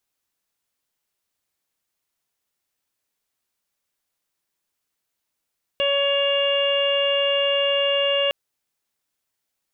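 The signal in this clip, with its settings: steady additive tone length 2.51 s, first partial 561 Hz, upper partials -12/-13.5/-14.5/-1/-13.5 dB, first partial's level -20.5 dB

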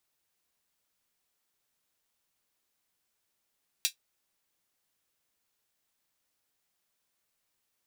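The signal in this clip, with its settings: closed hi-hat, high-pass 3200 Hz, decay 0.11 s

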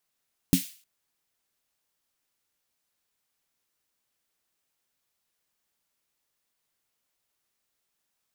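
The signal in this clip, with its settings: snare drum length 0.31 s, tones 180 Hz, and 270 Hz, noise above 2300 Hz, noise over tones -10.5 dB, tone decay 0.13 s, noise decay 0.43 s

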